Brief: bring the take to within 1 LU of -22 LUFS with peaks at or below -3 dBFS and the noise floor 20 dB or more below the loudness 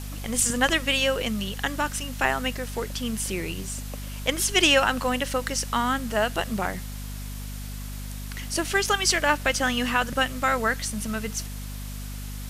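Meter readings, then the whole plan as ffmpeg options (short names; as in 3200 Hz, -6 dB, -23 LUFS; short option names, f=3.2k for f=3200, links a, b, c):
hum 50 Hz; harmonics up to 250 Hz; hum level -33 dBFS; noise floor -35 dBFS; noise floor target -45 dBFS; loudness -24.5 LUFS; peak -6.5 dBFS; loudness target -22.0 LUFS
-> -af "bandreject=f=50:t=h:w=6,bandreject=f=100:t=h:w=6,bandreject=f=150:t=h:w=6,bandreject=f=200:t=h:w=6,bandreject=f=250:t=h:w=6"
-af "afftdn=nr=10:nf=-35"
-af "volume=2.5dB"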